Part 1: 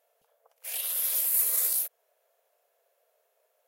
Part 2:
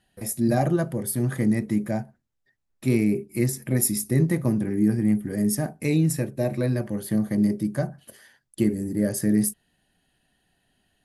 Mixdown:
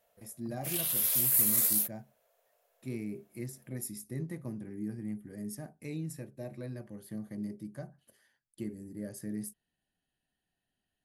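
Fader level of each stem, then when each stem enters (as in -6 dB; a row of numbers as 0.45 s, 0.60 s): -0.5 dB, -17.0 dB; 0.00 s, 0.00 s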